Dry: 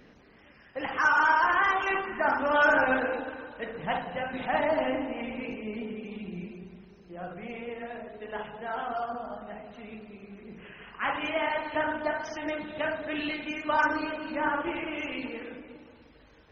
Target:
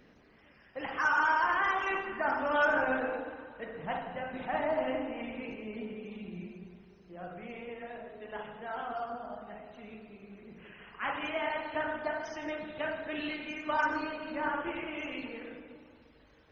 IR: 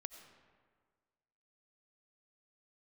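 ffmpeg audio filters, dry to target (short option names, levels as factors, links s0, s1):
-filter_complex "[0:a]asettb=1/sr,asplit=3[s0][s1][s2];[s0]atrim=end=2.654[s3];[s1]atrim=start=2.65:end=4.88,asetpts=PTS-STARTPTS,afade=t=in:d=0.004:c=qsin,afade=t=out:st=2.226:d=0.004:c=qsin,lowpass=f=2400:p=1[s4];[s2]atrim=start=4.876[s5];[s3][s4]acrossfade=d=0.004:c1=hsin:c2=qsin[s6];[s6][s5]acrossfade=d=0.004:c1=qsin:c2=hsin[s7];[1:a]atrim=start_sample=2205,afade=t=out:st=0.24:d=0.01,atrim=end_sample=11025[s8];[s7][s8]afir=irnorm=-1:irlink=0"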